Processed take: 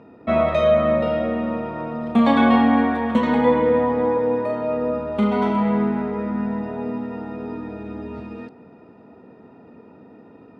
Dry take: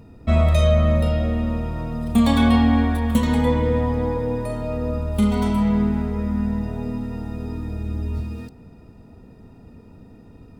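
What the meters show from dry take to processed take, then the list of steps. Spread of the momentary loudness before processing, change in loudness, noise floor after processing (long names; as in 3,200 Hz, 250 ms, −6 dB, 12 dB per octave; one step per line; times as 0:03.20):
13 LU, +1.0 dB, −48 dBFS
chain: band-pass filter 300–2,100 Hz
level +6 dB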